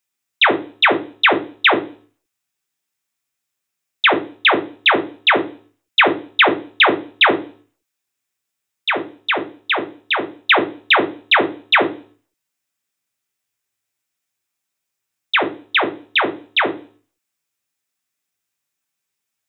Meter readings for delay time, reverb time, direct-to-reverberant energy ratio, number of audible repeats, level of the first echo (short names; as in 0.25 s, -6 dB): none, 0.40 s, 5.5 dB, none, none